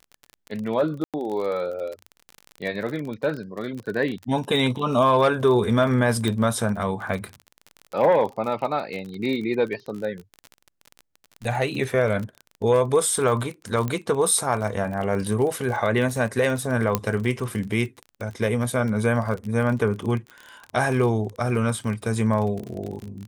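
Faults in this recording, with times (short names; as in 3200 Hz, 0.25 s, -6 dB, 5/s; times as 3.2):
crackle 35/s -29 dBFS
1.04–1.14 gap 97 ms
6.28 pop -12 dBFS
13.88 pop -14 dBFS
16.95 pop -5 dBFS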